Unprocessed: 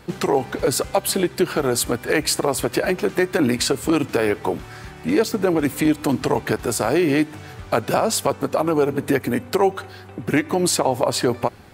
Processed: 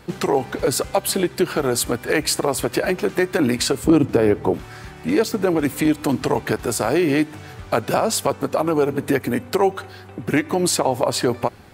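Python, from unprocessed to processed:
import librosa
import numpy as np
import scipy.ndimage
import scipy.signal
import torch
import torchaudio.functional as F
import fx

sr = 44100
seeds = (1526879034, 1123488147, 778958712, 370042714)

y = fx.tilt_shelf(x, sr, db=7.0, hz=780.0, at=(3.84, 4.54))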